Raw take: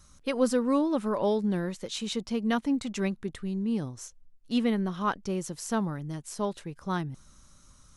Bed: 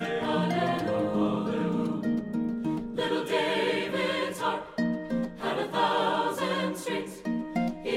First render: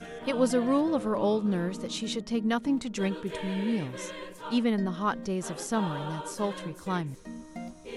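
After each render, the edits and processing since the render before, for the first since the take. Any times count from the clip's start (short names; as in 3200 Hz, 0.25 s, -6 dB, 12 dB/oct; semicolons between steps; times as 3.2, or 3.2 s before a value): add bed -11.5 dB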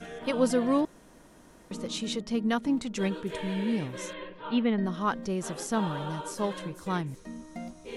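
0.85–1.71 room tone; 4.13–4.84 steep low-pass 3700 Hz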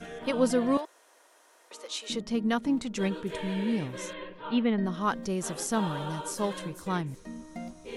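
0.77–2.1 Bessel high-pass 680 Hz, order 6; 5.03–6.82 high shelf 5900 Hz +6.5 dB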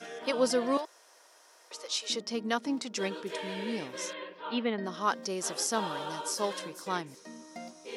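HPF 340 Hz 12 dB/oct; bell 5200 Hz +9 dB 0.48 oct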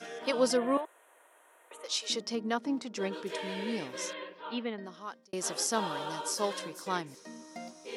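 0.57–1.84 Butterworth band-stop 5100 Hz, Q 0.89; 2.35–3.13 high shelf 2200 Hz -8.5 dB; 4.14–5.33 fade out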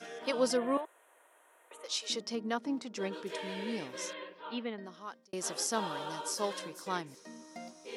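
gain -2.5 dB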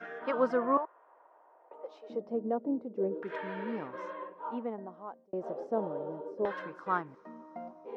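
LFO low-pass saw down 0.31 Hz 430–1600 Hz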